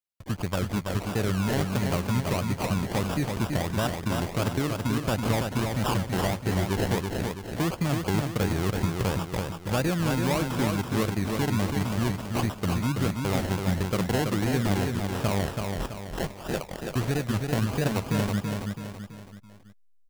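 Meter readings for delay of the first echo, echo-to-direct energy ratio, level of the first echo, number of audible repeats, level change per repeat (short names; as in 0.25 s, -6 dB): 0.33 s, -3.5 dB, -4.5 dB, 4, -6.5 dB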